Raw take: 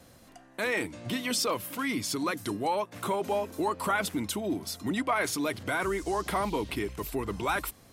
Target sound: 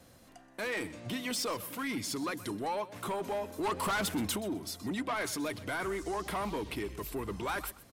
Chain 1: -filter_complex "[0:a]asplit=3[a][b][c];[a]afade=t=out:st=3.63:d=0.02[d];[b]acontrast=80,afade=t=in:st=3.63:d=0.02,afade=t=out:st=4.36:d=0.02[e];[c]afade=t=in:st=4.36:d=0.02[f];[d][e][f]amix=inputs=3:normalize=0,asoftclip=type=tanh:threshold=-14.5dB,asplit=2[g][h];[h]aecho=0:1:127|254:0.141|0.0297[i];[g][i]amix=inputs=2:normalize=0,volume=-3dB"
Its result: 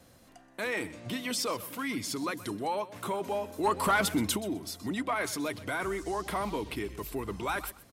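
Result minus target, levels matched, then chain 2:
soft clip: distortion -12 dB
-filter_complex "[0:a]asplit=3[a][b][c];[a]afade=t=out:st=3.63:d=0.02[d];[b]acontrast=80,afade=t=in:st=3.63:d=0.02,afade=t=out:st=4.36:d=0.02[e];[c]afade=t=in:st=4.36:d=0.02[f];[d][e][f]amix=inputs=3:normalize=0,asoftclip=type=tanh:threshold=-25.5dB,asplit=2[g][h];[h]aecho=0:1:127|254:0.141|0.0297[i];[g][i]amix=inputs=2:normalize=0,volume=-3dB"

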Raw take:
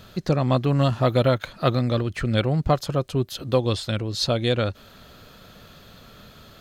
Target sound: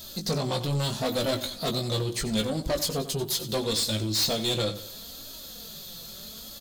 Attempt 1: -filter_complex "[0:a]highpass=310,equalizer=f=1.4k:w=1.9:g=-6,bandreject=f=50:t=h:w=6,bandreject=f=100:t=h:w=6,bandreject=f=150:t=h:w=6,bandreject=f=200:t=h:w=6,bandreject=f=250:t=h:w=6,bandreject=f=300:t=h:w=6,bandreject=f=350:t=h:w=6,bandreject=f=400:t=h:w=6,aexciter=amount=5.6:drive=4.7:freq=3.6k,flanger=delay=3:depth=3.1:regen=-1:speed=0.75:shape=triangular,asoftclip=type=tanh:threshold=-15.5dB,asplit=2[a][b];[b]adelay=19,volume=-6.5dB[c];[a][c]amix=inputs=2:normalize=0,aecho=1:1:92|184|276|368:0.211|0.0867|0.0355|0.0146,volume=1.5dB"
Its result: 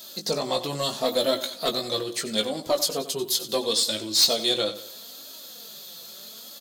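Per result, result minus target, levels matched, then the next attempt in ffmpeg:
250 Hz band -5.5 dB; soft clip: distortion -6 dB
-filter_complex "[0:a]equalizer=f=1.4k:w=1.9:g=-6,bandreject=f=50:t=h:w=6,bandreject=f=100:t=h:w=6,bandreject=f=150:t=h:w=6,bandreject=f=200:t=h:w=6,bandreject=f=250:t=h:w=6,bandreject=f=300:t=h:w=6,bandreject=f=350:t=h:w=6,bandreject=f=400:t=h:w=6,aexciter=amount=5.6:drive=4.7:freq=3.6k,flanger=delay=3:depth=3.1:regen=-1:speed=0.75:shape=triangular,asoftclip=type=tanh:threshold=-15.5dB,asplit=2[a][b];[b]adelay=19,volume=-6.5dB[c];[a][c]amix=inputs=2:normalize=0,aecho=1:1:92|184|276|368:0.211|0.0867|0.0355|0.0146,volume=1.5dB"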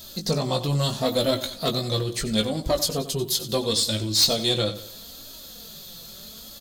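soft clip: distortion -7 dB
-filter_complex "[0:a]equalizer=f=1.4k:w=1.9:g=-6,bandreject=f=50:t=h:w=6,bandreject=f=100:t=h:w=6,bandreject=f=150:t=h:w=6,bandreject=f=200:t=h:w=6,bandreject=f=250:t=h:w=6,bandreject=f=300:t=h:w=6,bandreject=f=350:t=h:w=6,bandreject=f=400:t=h:w=6,aexciter=amount=5.6:drive=4.7:freq=3.6k,flanger=delay=3:depth=3.1:regen=-1:speed=0.75:shape=triangular,asoftclip=type=tanh:threshold=-25dB,asplit=2[a][b];[b]adelay=19,volume=-6.5dB[c];[a][c]amix=inputs=2:normalize=0,aecho=1:1:92|184|276|368:0.211|0.0867|0.0355|0.0146,volume=1.5dB"

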